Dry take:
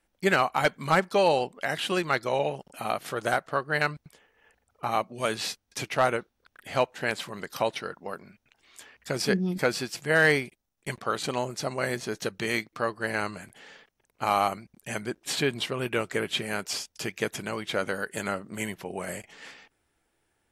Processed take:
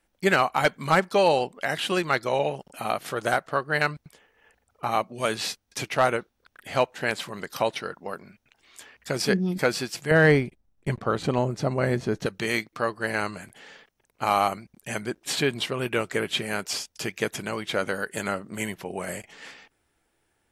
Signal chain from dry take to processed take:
0:10.11–0:12.26: spectral tilt −3 dB per octave
level +2 dB

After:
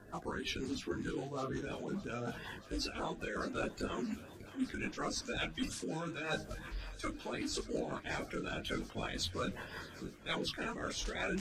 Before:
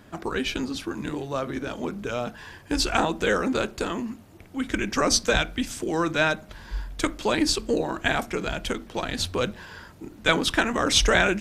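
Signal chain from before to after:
spectral magnitudes quantised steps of 30 dB
reversed playback
downward compressor 6 to 1, threshold −33 dBFS, peak gain reduction 16.5 dB
reversed playback
feedback echo with a high-pass in the loop 618 ms, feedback 78%, high-pass 420 Hz, level −16 dB
rotating-speaker cabinet horn 5.5 Hz
micro pitch shift up and down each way 27 cents
level +3 dB

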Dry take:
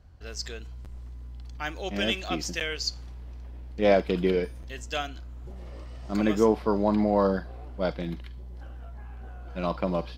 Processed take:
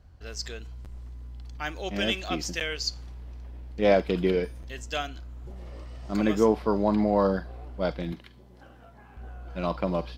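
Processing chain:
0:08.12–0:09.17: high-pass filter 140 Hz 12 dB per octave

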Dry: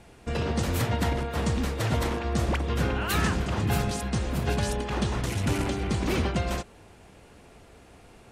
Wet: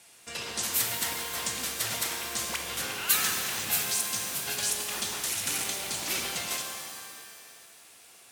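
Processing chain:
high-pass filter 100 Hz 12 dB per octave
first-order pre-emphasis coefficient 0.97
reverb with rising layers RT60 1.9 s, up +7 semitones, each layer −2 dB, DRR 4 dB
level +9 dB

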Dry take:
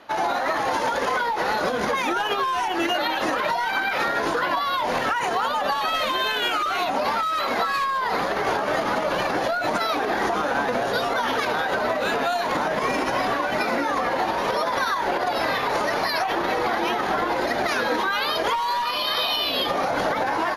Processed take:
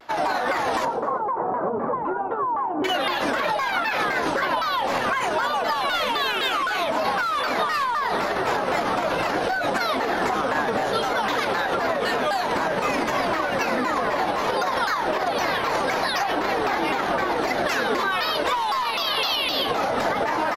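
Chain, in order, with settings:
0:00.85–0:02.84: Chebyshev band-pass filter 110–1,100 Hz, order 3
echo with shifted repeats 112 ms, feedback 44%, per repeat −72 Hz, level −16 dB
pitch modulation by a square or saw wave saw down 3.9 Hz, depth 250 cents

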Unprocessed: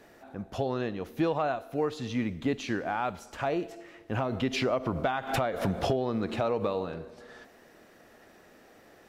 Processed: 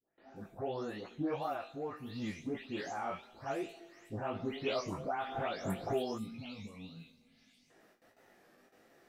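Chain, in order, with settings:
every frequency bin delayed by itself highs late, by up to 359 ms
noise gate with hold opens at −47 dBFS
low-shelf EQ 110 Hz −6.5 dB
chorus effect 2.7 Hz, delay 17.5 ms, depth 3.5 ms
gain on a spectral selection 0:06.18–0:07.70, 300–2,000 Hz −19 dB
tuned comb filter 400 Hz, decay 0.75 s, mix 60%
wow of a warped record 33 1/3 rpm, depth 100 cents
level +3.5 dB

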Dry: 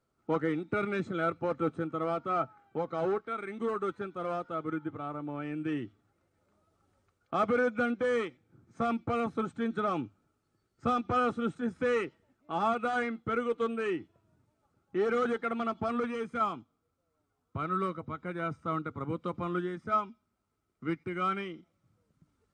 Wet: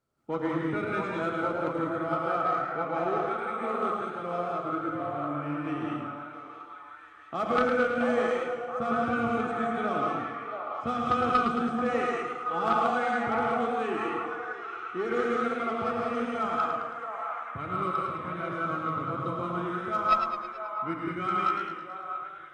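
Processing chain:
hum removal 50.9 Hz, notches 11
on a send: echo through a band-pass that steps 677 ms, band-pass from 760 Hz, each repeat 0.7 octaves, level −1.5 dB
on the sum: hard clipping −19 dBFS, distortion −37 dB
reverb whose tail is shaped and stops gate 220 ms rising, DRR −1.5 dB
harmonic generator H 2 −10 dB, 3 −21 dB, 4 −20 dB, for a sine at −11.5 dBFS
feedback echo with a swinging delay time 108 ms, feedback 57%, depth 88 cents, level −7 dB

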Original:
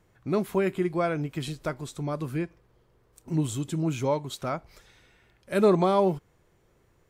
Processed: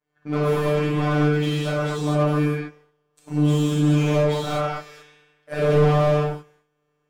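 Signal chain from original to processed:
downward expander −51 dBFS
mid-hump overdrive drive 25 dB, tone 1,900 Hz, clips at −10 dBFS
phases set to zero 149 Hz
reverb whose tail is shaped and stops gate 260 ms flat, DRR −7 dB
slew-rate limiting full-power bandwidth 170 Hz
level −5.5 dB

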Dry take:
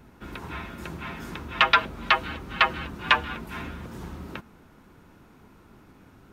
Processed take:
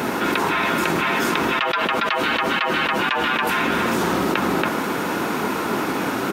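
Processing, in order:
high-pass filter 300 Hz 12 dB per octave
slap from a distant wall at 48 metres, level −10 dB
envelope flattener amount 100%
level −6.5 dB

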